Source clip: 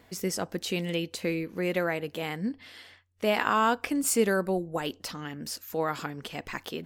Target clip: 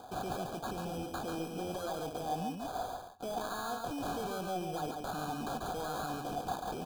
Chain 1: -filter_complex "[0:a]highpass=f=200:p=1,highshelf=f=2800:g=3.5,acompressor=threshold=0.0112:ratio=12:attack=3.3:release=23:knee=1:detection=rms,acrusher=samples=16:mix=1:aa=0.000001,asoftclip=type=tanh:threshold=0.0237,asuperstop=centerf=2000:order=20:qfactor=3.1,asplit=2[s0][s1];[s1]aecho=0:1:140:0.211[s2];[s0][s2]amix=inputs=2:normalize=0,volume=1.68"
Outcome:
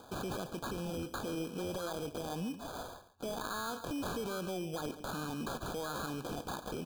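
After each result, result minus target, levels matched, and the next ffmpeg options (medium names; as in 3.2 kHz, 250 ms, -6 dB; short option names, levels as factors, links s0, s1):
echo-to-direct -9 dB; saturation: distortion -9 dB; 1 kHz band -4.5 dB
-filter_complex "[0:a]highpass=f=200:p=1,highshelf=f=2800:g=3.5,acompressor=threshold=0.0112:ratio=12:attack=3.3:release=23:knee=1:detection=rms,acrusher=samples=16:mix=1:aa=0.000001,asoftclip=type=tanh:threshold=0.0237,asuperstop=centerf=2000:order=20:qfactor=3.1,asplit=2[s0][s1];[s1]aecho=0:1:140:0.596[s2];[s0][s2]amix=inputs=2:normalize=0,volume=1.68"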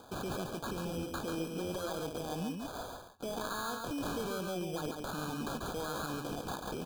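saturation: distortion -9 dB; 1 kHz band -4.5 dB
-filter_complex "[0:a]highpass=f=200:p=1,highshelf=f=2800:g=3.5,acompressor=threshold=0.0112:ratio=12:attack=3.3:release=23:knee=1:detection=rms,acrusher=samples=16:mix=1:aa=0.000001,asoftclip=type=tanh:threshold=0.0106,asuperstop=centerf=2000:order=20:qfactor=3.1,asplit=2[s0][s1];[s1]aecho=0:1:140:0.596[s2];[s0][s2]amix=inputs=2:normalize=0,volume=1.68"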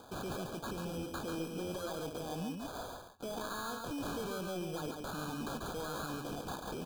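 1 kHz band -4.5 dB
-filter_complex "[0:a]highpass=f=200:p=1,highshelf=f=2800:g=3.5,acompressor=threshold=0.0112:ratio=12:attack=3.3:release=23:knee=1:detection=rms,acrusher=samples=16:mix=1:aa=0.000001,asoftclip=type=tanh:threshold=0.0106,asuperstop=centerf=2000:order=20:qfactor=3.1,equalizer=f=740:t=o:w=0.24:g=13.5,asplit=2[s0][s1];[s1]aecho=0:1:140:0.596[s2];[s0][s2]amix=inputs=2:normalize=0,volume=1.68"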